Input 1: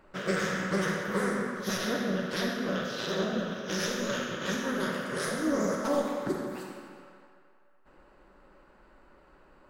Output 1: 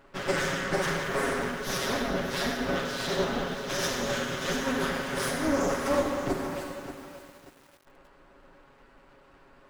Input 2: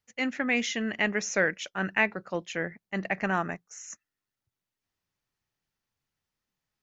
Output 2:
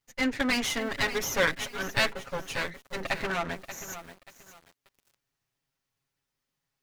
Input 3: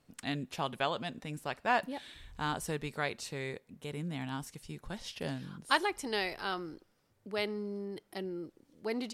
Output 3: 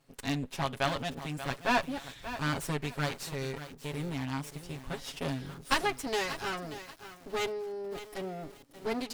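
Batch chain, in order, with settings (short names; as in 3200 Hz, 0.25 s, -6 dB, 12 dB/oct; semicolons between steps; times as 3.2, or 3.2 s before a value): minimum comb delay 7.3 ms; lo-fi delay 0.583 s, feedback 35%, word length 8-bit, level -11.5 dB; gain +3.5 dB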